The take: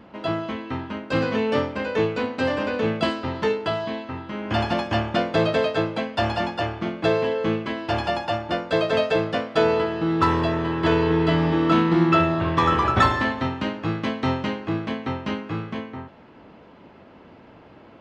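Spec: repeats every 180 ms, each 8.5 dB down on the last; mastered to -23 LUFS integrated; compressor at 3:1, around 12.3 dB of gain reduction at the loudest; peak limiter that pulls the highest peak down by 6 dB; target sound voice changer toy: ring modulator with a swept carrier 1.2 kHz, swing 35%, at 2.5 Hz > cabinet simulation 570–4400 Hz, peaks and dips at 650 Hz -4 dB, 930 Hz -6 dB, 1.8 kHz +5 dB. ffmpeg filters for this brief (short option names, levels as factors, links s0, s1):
-af "acompressor=threshold=0.0282:ratio=3,alimiter=limit=0.075:level=0:latency=1,aecho=1:1:180|360|540|720:0.376|0.143|0.0543|0.0206,aeval=exprs='val(0)*sin(2*PI*1200*n/s+1200*0.35/2.5*sin(2*PI*2.5*n/s))':c=same,highpass=570,equalizer=f=650:t=q:w=4:g=-4,equalizer=f=930:t=q:w=4:g=-6,equalizer=f=1800:t=q:w=4:g=5,lowpass=f=4400:w=0.5412,lowpass=f=4400:w=1.3066,volume=3.55"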